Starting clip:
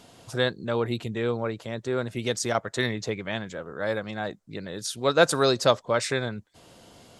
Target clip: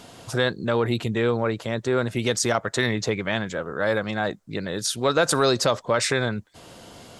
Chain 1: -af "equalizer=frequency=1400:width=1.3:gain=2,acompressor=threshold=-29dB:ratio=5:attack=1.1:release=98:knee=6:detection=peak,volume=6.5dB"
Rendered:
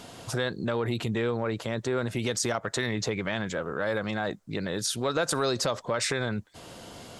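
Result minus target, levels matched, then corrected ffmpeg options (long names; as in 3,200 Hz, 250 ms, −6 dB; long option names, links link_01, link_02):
downward compressor: peak gain reduction +7 dB
-af "equalizer=frequency=1400:width=1.3:gain=2,acompressor=threshold=-20dB:ratio=5:attack=1.1:release=98:knee=6:detection=peak,volume=6.5dB"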